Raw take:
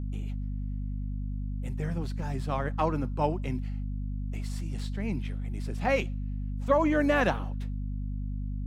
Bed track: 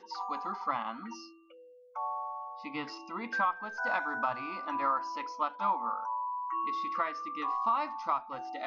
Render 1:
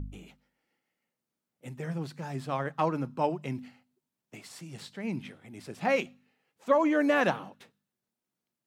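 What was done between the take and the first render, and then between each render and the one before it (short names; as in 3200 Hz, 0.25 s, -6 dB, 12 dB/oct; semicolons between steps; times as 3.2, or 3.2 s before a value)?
de-hum 50 Hz, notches 5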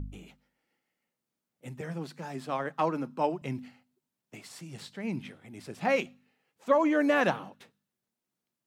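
1.81–3.42 HPF 170 Hz 24 dB/oct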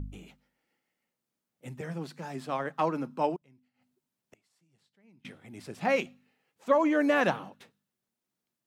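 3.36–5.25 flipped gate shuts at -42 dBFS, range -27 dB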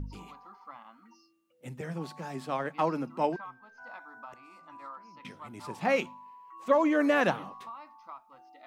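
add bed track -15 dB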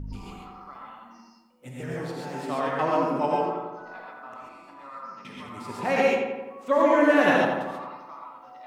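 on a send: darkening echo 86 ms, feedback 64%, low-pass 2900 Hz, level -4 dB; on the sum: non-linear reverb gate 0.16 s rising, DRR -3 dB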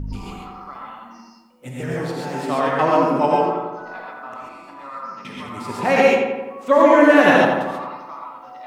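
gain +7.5 dB; limiter -2 dBFS, peak gain reduction 2 dB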